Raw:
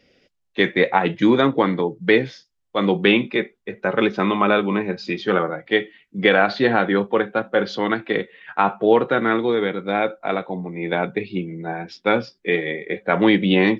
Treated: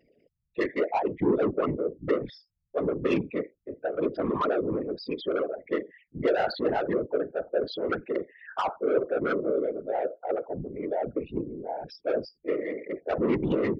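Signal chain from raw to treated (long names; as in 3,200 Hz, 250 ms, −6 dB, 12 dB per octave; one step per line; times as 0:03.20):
spectral envelope exaggerated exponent 3
soft clipping −13.5 dBFS, distortion −14 dB
random phases in short frames
level −6 dB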